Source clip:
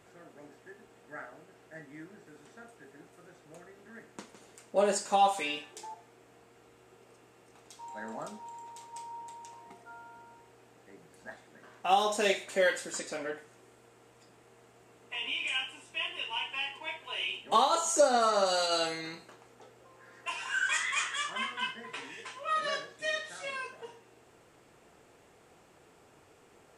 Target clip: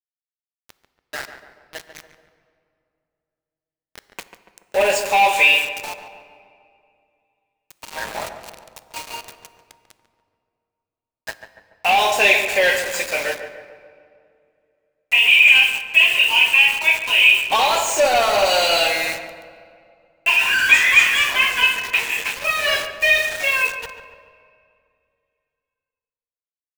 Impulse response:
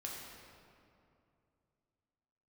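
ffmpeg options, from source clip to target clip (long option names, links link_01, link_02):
-filter_complex "[0:a]equalizer=frequency=270:width_type=o:width=0.83:gain=-12,asplit=2[link_01][link_02];[link_02]highpass=frequency=720:poles=1,volume=21dB,asoftclip=type=tanh:threshold=-12.5dB[link_03];[link_01][link_03]amix=inputs=2:normalize=0,lowpass=frequency=3300:poles=1,volume=-6dB,equalizer=frequency=160:width_type=o:width=0.33:gain=-10,equalizer=frequency=1250:width_type=o:width=0.33:gain=-10,equalizer=frequency=2500:width_type=o:width=0.33:gain=12,aeval=exprs='val(0)*gte(abs(val(0)),0.0355)':channel_layout=same,asplit=2[link_04][link_05];[link_05]adelay=143,lowpass=frequency=1700:poles=1,volume=-8.5dB,asplit=2[link_06][link_07];[link_07]adelay=143,lowpass=frequency=1700:poles=1,volume=0.54,asplit=2[link_08][link_09];[link_09]adelay=143,lowpass=frequency=1700:poles=1,volume=0.54,asplit=2[link_10][link_11];[link_11]adelay=143,lowpass=frequency=1700:poles=1,volume=0.54,asplit=2[link_12][link_13];[link_13]adelay=143,lowpass=frequency=1700:poles=1,volume=0.54,asplit=2[link_14][link_15];[link_15]adelay=143,lowpass=frequency=1700:poles=1,volume=0.54[link_16];[link_04][link_06][link_08][link_10][link_12][link_14][link_16]amix=inputs=7:normalize=0,asplit=2[link_17][link_18];[1:a]atrim=start_sample=2205[link_19];[link_18][link_19]afir=irnorm=-1:irlink=0,volume=-10.5dB[link_20];[link_17][link_20]amix=inputs=2:normalize=0,volume=3dB"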